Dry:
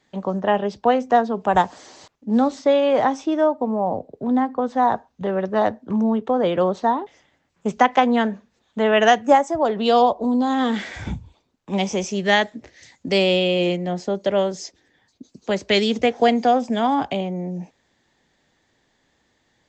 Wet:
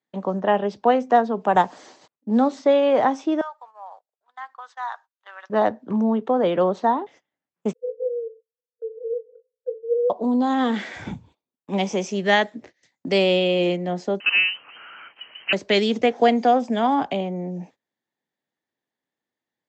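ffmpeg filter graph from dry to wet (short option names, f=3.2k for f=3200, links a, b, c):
-filter_complex "[0:a]asettb=1/sr,asplit=3[a][b][c];[a]atrim=end=3.414[d];[b]atrim=start=3.41:end=5.5,asetpts=PTS-STARTPTS,afade=t=in:d=0.004:c=qsin,afade=t=out:st=2.086:d=0.004:c=qsin,highpass=f=1.2k:w=0.5412,highpass=f=1.2k:w=1.3066,equalizer=f=2.3k:w=1.5:g=-4.5[e];[c]atrim=start=5.496[f];[d][e]acrossfade=d=0.004:c1=hsin:c2=qsin[g];[g][f]acrossfade=d=0.004:c1=qsin:c2=hsin,asettb=1/sr,asplit=3[h][i][j];[h]atrim=end=7.734[k];[i]atrim=start=7.73:end=10.1,asetpts=PTS-STARTPTS,afade=t=in:d=0.004:c=qsin,afade=t=out:st=2.366:d=0.004:c=qsin,acrusher=samples=18:mix=1:aa=0.000001:lfo=1:lforange=18:lforate=1.6,asuperpass=centerf=480:order=20:qfactor=6.6,asplit=2[l][m];[m]adelay=18,volume=-14dB[n];[l][n]amix=inputs=2:normalize=0,atrim=end_sample=104517[o];[j]atrim=start=10.096[p];[k][o]acrossfade=d=0.004:c1=hsin:c2=qsin[q];[q][p]acrossfade=d=0.004:c1=qsin:c2=hsin,asettb=1/sr,asplit=3[r][s][t];[r]atrim=end=14.204[u];[s]atrim=start=14.2:end=15.53,asetpts=PTS-STARTPTS,afade=t=in:d=0.004:c=qsin,afade=t=out:st=1.326:d=0.004:c=qsin,aeval=exprs='val(0)+0.5*0.0141*sgn(val(0))':c=same,equalizer=f=1.2k:w=0.95:g=4.5,lowpass=f=2.7k:t=q:w=0.5098,lowpass=f=2.7k:t=q:w=0.6013,lowpass=f=2.7k:t=q:w=0.9,lowpass=f=2.7k:t=q:w=2.563,afreqshift=-3200[v];[t]atrim=start=15.526[w];[u][v]acrossfade=d=0.004:c1=hsin:c2=qsin[x];[x][w]acrossfade=d=0.004:c1=qsin:c2=hsin,agate=range=-21dB:threshold=-44dB:ratio=16:detection=peak,highpass=160,highshelf=f=4.2k:g=-6.5"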